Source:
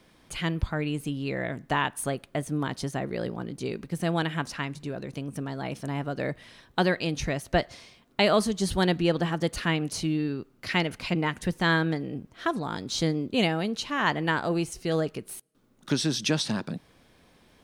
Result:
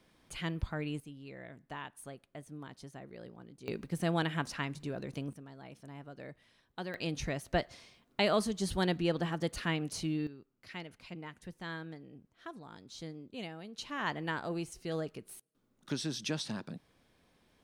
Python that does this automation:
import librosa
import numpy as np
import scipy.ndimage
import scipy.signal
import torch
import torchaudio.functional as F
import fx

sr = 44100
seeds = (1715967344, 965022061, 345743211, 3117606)

y = fx.gain(x, sr, db=fx.steps((0.0, -8.0), (1.0, -17.5), (3.68, -4.5), (5.33, -17.0), (6.94, -7.0), (10.27, -18.5), (13.78, -10.0)))